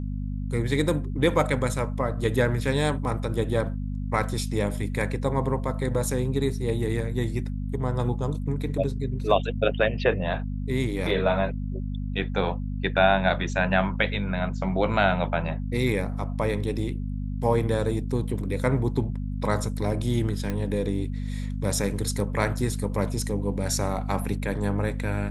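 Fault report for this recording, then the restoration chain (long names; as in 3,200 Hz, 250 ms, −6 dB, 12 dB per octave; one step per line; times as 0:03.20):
mains hum 50 Hz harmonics 5 −30 dBFS
0:20.50: click −16 dBFS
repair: click removal
hum removal 50 Hz, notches 5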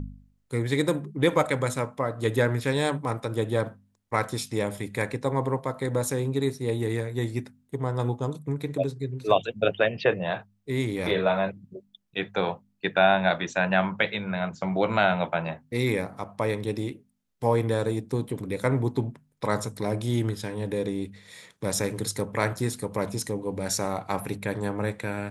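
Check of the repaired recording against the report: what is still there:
none of them is left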